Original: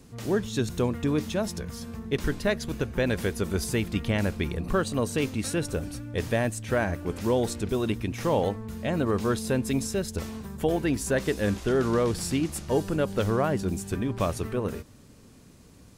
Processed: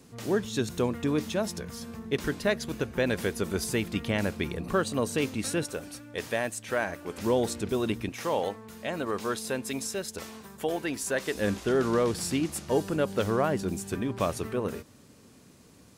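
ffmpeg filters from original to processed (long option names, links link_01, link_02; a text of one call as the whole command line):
ffmpeg -i in.wav -af "asetnsamples=nb_out_samples=441:pad=0,asendcmd='5.64 highpass f 570;7.18 highpass f 160;8.09 highpass f 590;11.35 highpass f 170',highpass=frequency=170:poles=1" out.wav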